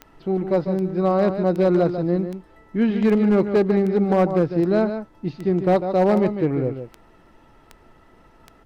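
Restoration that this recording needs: clip repair -11.5 dBFS; de-click; expander -44 dBFS, range -21 dB; inverse comb 0.148 s -9 dB

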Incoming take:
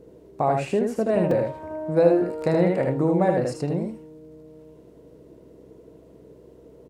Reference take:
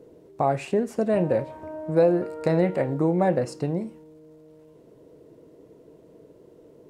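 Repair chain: de-hum 64.1 Hz, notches 7; interpolate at 1.31/2.42, 2.9 ms; inverse comb 77 ms -3.5 dB

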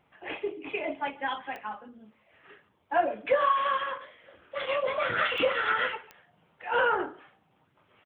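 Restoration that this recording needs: de-click; inverse comb 0.144 s -23 dB

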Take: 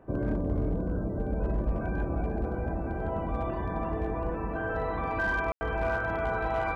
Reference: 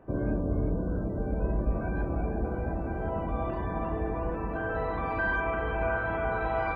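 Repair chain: clip repair -22 dBFS; room tone fill 5.52–5.61

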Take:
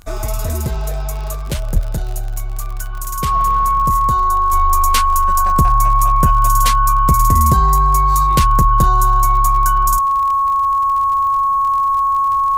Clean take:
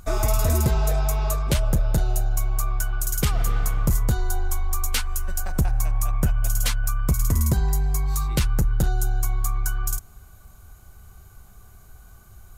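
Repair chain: de-click; notch 1100 Hz, Q 30; 1.73–1.85 HPF 140 Hz 24 dB/oct; gain 0 dB, from 4.53 s -6.5 dB

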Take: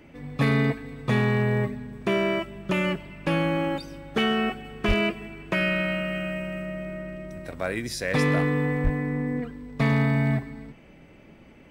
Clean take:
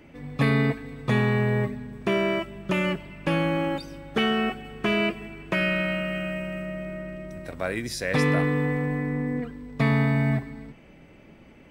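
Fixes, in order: clip repair -15 dBFS; 4.87–4.99 HPF 140 Hz 24 dB/oct; 8.83–8.95 HPF 140 Hz 24 dB/oct

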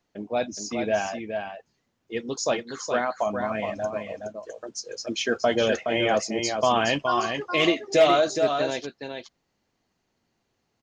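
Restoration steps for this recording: clip repair -10 dBFS; inverse comb 0.419 s -6 dB

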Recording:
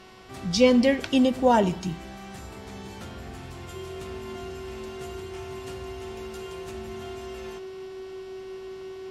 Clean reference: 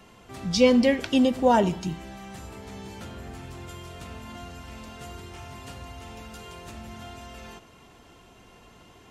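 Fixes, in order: de-hum 374.3 Hz, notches 15; notch 380 Hz, Q 30

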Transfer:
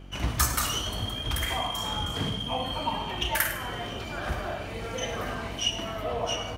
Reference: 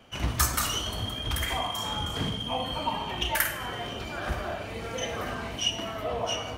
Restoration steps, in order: clip repair -10.5 dBFS; de-hum 46.7 Hz, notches 8; inverse comb 0.104 s -14.5 dB

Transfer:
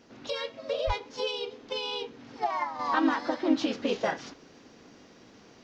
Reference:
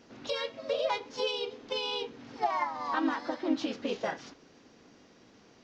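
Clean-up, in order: 0.86–0.98 HPF 140 Hz 24 dB/oct; 2.79 gain correction -4.5 dB

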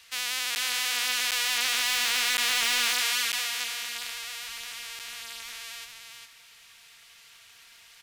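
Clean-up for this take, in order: clip repair -11.5 dBFS; de-click; interpolate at 0.55/1.31/2.37/3.32/4.99, 8.2 ms; inverse comb 0.404 s -5 dB

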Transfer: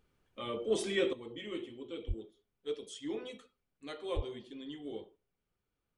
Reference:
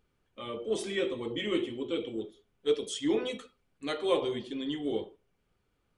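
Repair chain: 2.07–2.19 HPF 140 Hz 24 dB/oct; 4.15–4.27 HPF 140 Hz 24 dB/oct; gain 0 dB, from 1.13 s +10.5 dB

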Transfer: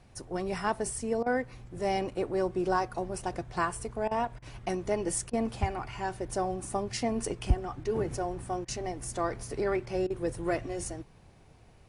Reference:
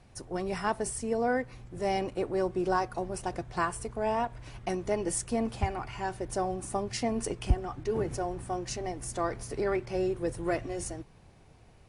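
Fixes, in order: interpolate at 1.23/4.08/4.39/5.3/8.65/10.07, 31 ms

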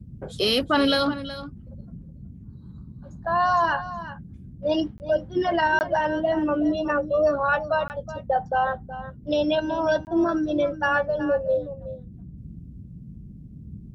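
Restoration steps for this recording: interpolate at 4.98/5.79/7.88/10.05, 19 ms; noise print and reduce 27 dB; inverse comb 0.371 s -13.5 dB

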